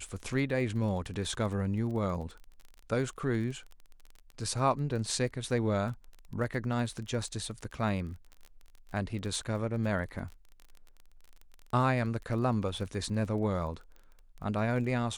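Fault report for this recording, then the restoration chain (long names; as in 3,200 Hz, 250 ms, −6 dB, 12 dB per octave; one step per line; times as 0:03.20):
surface crackle 27 per second −39 dBFS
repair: click removal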